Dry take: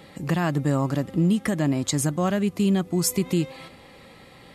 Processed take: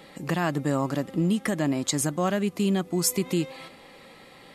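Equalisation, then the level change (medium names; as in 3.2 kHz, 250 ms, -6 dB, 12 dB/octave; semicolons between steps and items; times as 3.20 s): peaking EQ 75 Hz -13 dB 1.7 oct; 0.0 dB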